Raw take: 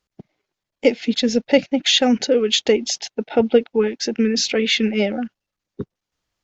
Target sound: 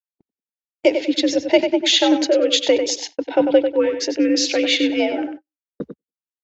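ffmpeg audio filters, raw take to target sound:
-filter_complex "[0:a]asplit=2[a][b];[b]adelay=96,lowpass=f=3.9k:p=1,volume=-7dB,asplit=2[c][d];[d]adelay=96,lowpass=f=3.9k:p=1,volume=0.27,asplit=2[e][f];[f]adelay=96,lowpass=f=3.9k:p=1,volume=0.27[g];[a][c][e][g]amix=inputs=4:normalize=0,afreqshift=65,agate=range=-42dB:threshold=-32dB:ratio=16:detection=peak"

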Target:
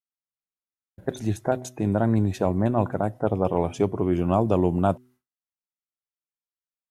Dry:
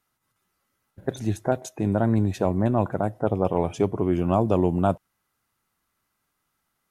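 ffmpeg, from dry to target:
-af "bandreject=f=125:t=h:w=4,bandreject=f=250:t=h:w=4,bandreject=f=375:t=h:w=4,agate=range=-33dB:threshold=-47dB:ratio=3:detection=peak"

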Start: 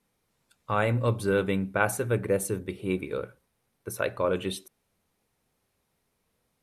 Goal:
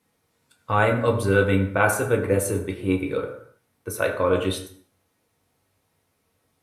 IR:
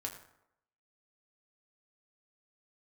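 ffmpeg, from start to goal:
-filter_complex "[0:a]highpass=58[a];[1:a]atrim=start_sample=2205,afade=t=out:st=0.39:d=0.01,atrim=end_sample=17640[b];[a][b]afir=irnorm=-1:irlink=0,volume=6.5dB"

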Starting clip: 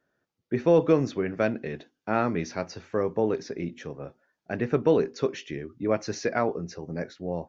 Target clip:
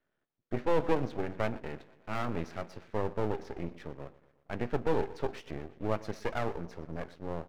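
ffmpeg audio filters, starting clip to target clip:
-af "lowpass=3.3k,aecho=1:1:119|238|357|476|595:0.112|0.0662|0.0391|0.023|0.0136,aeval=exprs='max(val(0),0)':c=same,volume=-2.5dB"

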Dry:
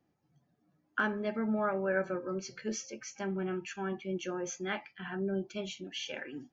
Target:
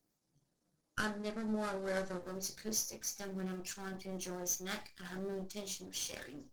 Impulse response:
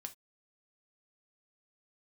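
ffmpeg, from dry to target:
-filter_complex "[0:a]aeval=exprs='if(lt(val(0),0),0.251*val(0),val(0))':c=same,aexciter=amount=7.2:drive=1.1:freq=4k,asplit=2[a][b];[1:a]atrim=start_sample=2205,highshelf=f=6k:g=-8,adelay=28[c];[b][c]afir=irnorm=-1:irlink=0,volume=-2dB[d];[a][d]amix=inputs=2:normalize=0,volume=-3dB" -ar 48000 -c:a libopus -b:a 16k

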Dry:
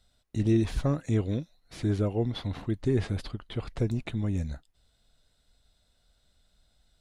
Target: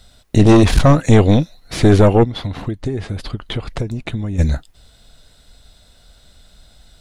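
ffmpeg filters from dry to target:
-filter_complex "[0:a]asplit=3[a][b][c];[a]afade=t=out:st=2.23:d=0.02[d];[b]acompressor=threshold=-40dB:ratio=6,afade=t=in:st=2.23:d=0.02,afade=t=out:st=4.38:d=0.02[e];[c]afade=t=in:st=4.38:d=0.02[f];[d][e][f]amix=inputs=3:normalize=0,aeval=exprs='0.224*(cos(1*acos(clip(val(0)/0.224,-1,1)))-cos(1*PI/2))+0.0501*(cos(4*acos(clip(val(0)/0.224,-1,1)))-cos(4*PI/2))':c=same,apsyclip=21.5dB,volume=-2dB"

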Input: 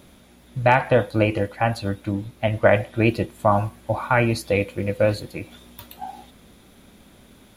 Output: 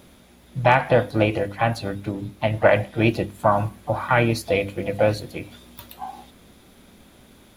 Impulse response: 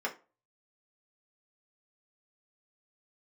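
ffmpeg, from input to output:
-filter_complex "[0:a]bandreject=f=50:t=h:w=6,bandreject=f=100:t=h:w=6,bandreject=f=150:t=h:w=6,bandreject=f=200:t=h:w=6,bandreject=f=250:t=h:w=6,bandreject=f=300:t=h:w=6,asplit=2[a][b];[b]asetrate=58866,aresample=44100,atempo=0.749154,volume=-12dB[c];[a][c]amix=inputs=2:normalize=0"

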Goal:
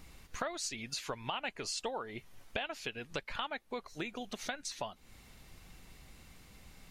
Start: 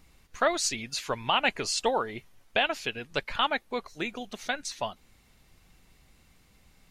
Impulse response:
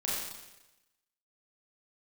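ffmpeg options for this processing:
-af "acompressor=threshold=-43dB:ratio=4,volume=4.5dB"

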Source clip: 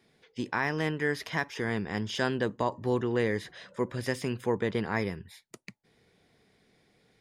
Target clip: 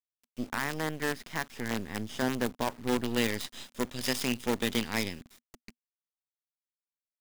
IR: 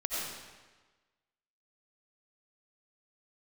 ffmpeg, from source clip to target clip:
-filter_complex "[0:a]asettb=1/sr,asplit=3[a][b][c];[a]atrim=end=3.044[d];[b]atrim=start=3.04:end=5.21,asetpts=PTS-STARTPTS,afade=t=in:d=0.004:c=qsin,afade=t=out:st=2.166:d=0.004:c=qsin,highshelf=f=2.1k:t=q:w=1.5:g=12[e];[c]atrim=start=5.206[f];[d][e]acrossfade=d=0.004:c1=hsin:c2=qsin[g];[g][f]acrossfade=d=0.004:c1=qsin:c2=hsin,acrusher=bits=5:dc=4:mix=0:aa=0.000001,equalizer=f=240:w=4.5:g=10,volume=-3.5dB"

